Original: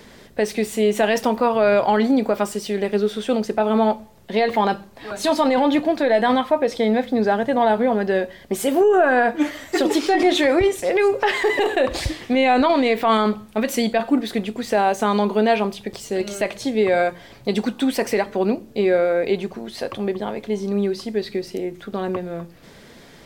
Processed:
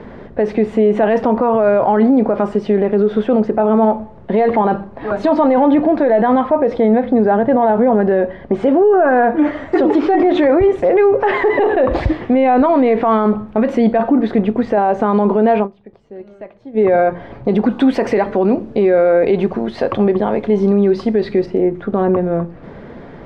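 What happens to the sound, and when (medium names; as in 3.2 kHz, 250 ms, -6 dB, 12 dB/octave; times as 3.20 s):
6.98–8.96 s: low-pass 6.1 kHz
15.56–16.85 s: dip -22 dB, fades 0.12 s
17.70–21.46 s: treble shelf 2.8 kHz +11.5 dB
whole clip: low-pass 1.2 kHz 12 dB/octave; loudness maximiser +17 dB; trim -4.5 dB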